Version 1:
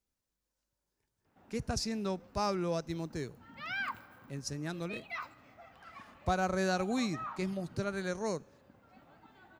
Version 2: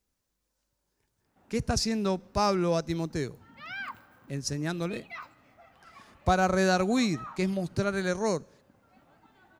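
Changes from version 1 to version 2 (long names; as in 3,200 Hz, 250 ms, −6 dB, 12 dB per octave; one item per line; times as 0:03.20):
speech +7.0 dB
reverb: off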